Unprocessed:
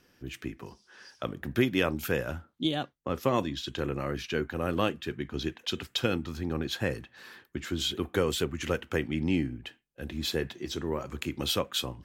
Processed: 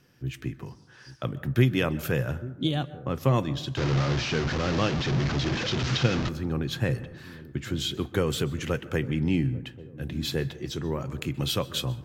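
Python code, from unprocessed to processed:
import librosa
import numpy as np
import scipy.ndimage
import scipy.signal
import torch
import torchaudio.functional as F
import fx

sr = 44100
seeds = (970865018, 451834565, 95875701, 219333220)

y = fx.delta_mod(x, sr, bps=32000, step_db=-24.5, at=(3.77, 6.29))
y = fx.peak_eq(y, sr, hz=130.0, db=13.5, octaves=0.61)
y = fx.echo_wet_lowpass(y, sr, ms=843, feedback_pct=37, hz=500.0, wet_db=-16)
y = fx.rev_plate(y, sr, seeds[0], rt60_s=0.85, hf_ratio=0.35, predelay_ms=115, drr_db=17.0)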